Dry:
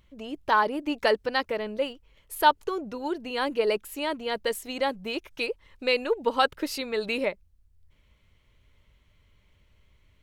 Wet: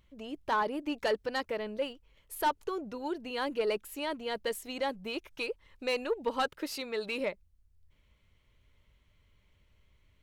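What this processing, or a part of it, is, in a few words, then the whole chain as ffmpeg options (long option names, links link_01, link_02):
saturation between pre-emphasis and de-emphasis: -filter_complex "[0:a]highshelf=frequency=2100:gain=10.5,asoftclip=type=tanh:threshold=-15.5dB,highshelf=frequency=2100:gain=-10.5,asettb=1/sr,asplit=3[link_01][link_02][link_03];[link_01]atrim=end=6.484[link_04];[link_02]atrim=start=6.48:end=7.2,asetpts=PTS-STARTPTS,afade=type=in:duration=0.004:curve=qsin,afade=type=out:start_time=0.716:duration=0.004:curve=qsin,lowshelf=frequency=140:gain=-9[link_05];[link_03]atrim=start=7.196[link_06];[link_04][link_05]acrossfade=duration=0.004:curve1=hsin:curve2=qsin[link_07];[link_07][link_06]acrossfade=duration=0.004:curve1=qsin:curve2=hsin,volume=-4.5dB"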